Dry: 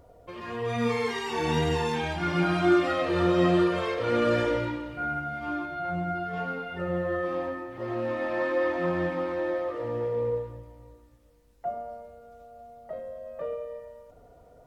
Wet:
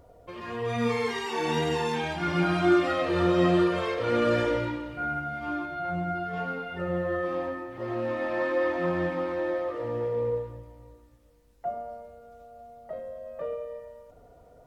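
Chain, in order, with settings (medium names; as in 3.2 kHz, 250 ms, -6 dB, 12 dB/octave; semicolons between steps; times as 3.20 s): 1.25–2.27 s: high-pass 230 Hz -> 100 Hz 12 dB/octave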